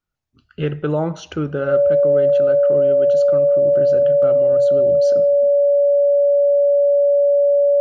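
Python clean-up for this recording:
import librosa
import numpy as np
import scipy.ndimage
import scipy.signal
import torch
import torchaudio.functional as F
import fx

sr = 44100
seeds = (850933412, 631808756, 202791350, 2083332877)

y = fx.notch(x, sr, hz=570.0, q=30.0)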